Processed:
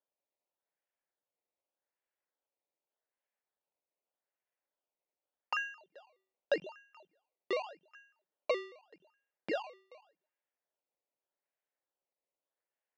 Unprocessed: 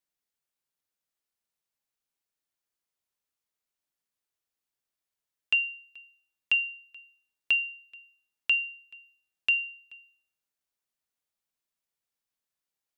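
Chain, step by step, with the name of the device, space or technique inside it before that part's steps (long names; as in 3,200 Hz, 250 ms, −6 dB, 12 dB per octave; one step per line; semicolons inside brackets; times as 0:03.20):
circuit-bent sampling toy (sample-and-hold swept by an LFO 19×, swing 100% 0.84 Hz; loudspeaker in its box 420–4,200 Hz, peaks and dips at 560 Hz +5 dB, 1,200 Hz −6 dB, 1,800 Hz +3 dB)
level −7.5 dB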